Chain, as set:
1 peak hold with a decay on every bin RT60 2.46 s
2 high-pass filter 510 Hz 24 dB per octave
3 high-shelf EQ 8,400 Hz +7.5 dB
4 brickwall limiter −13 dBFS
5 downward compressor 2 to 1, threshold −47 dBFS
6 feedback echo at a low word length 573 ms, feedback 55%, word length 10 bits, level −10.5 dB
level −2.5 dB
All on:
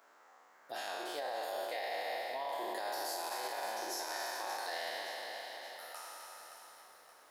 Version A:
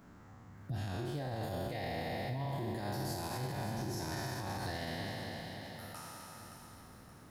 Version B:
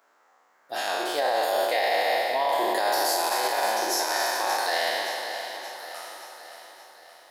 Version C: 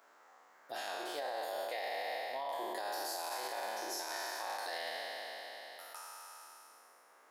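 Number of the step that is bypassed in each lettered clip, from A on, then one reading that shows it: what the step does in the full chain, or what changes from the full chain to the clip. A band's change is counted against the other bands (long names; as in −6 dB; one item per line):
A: 2, 250 Hz band +16.5 dB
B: 5, average gain reduction 11.0 dB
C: 6, change in momentary loudness spread −2 LU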